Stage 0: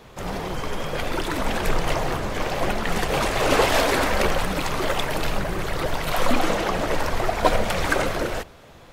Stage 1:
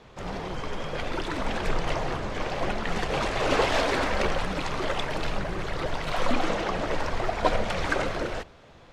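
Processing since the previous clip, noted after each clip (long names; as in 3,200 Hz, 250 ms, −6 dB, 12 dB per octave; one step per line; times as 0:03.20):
low-pass filter 6,100 Hz 12 dB per octave
level −4.5 dB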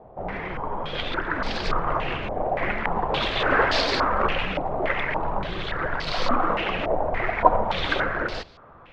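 low-pass on a step sequencer 3.5 Hz 720–4,600 Hz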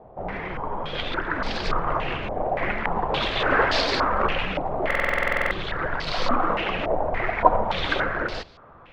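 buffer that repeats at 0:04.86, samples 2,048, times 13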